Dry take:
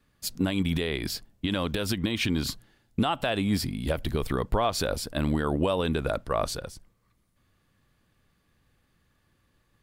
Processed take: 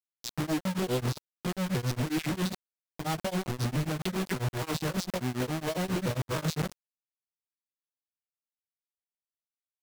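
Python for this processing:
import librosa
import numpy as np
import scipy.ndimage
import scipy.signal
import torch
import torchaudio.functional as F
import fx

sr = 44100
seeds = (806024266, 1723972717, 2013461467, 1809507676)

y = fx.vocoder_arp(x, sr, chord='major triad', root=47, every_ms=288)
y = fx.over_compress(y, sr, threshold_db=-35.0, ratio=-1.0)
y = fx.filter_lfo_notch(y, sr, shape='square', hz=0.4, low_hz=720.0, high_hz=1900.0, q=1.1)
y = fx.quant_companded(y, sr, bits=2)
y = fx.vibrato(y, sr, rate_hz=6.5, depth_cents=51.0)
y = y * np.abs(np.cos(np.pi * 7.4 * np.arange(len(y)) / sr))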